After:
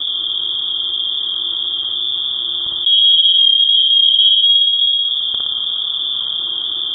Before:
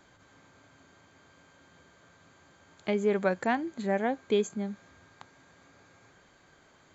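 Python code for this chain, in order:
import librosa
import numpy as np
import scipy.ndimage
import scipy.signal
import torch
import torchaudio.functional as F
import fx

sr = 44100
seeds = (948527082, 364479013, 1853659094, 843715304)

p1 = fx.block_reorder(x, sr, ms=130.0, group=2)
p2 = scipy.signal.sosfilt(scipy.signal.ellip(3, 1.0, 40, [300.0, 2300.0], 'bandstop', fs=sr, output='sos'), p1)
p3 = fx.peak_eq(p2, sr, hz=64.0, db=14.5, octaves=0.4)
p4 = fx.env_lowpass_down(p3, sr, base_hz=770.0, full_db=-35.0)
p5 = fx.low_shelf_res(p4, sr, hz=600.0, db=13.5, q=3.0)
p6 = p5 + fx.room_flutter(p5, sr, wall_m=10.1, rt60_s=0.9, dry=0)
p7 = fx.freq_invert(p6, sr, carrier_hz=3500)
p8 = fx.env_flatten(p7, sr, amount_pct=70)
y = p8 * 10.0 ** (1.0 / 20.0)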